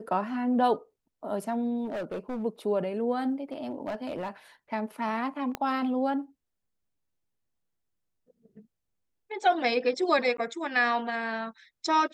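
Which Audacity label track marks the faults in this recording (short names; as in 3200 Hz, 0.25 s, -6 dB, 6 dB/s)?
1.840000	2.440000	clipped -30 dBFS
3.520000	4.290000	clipped -28 dBFS
5.550000	5.550000	pop -16 dBFS
10.370000	10.380000	gap 13 ms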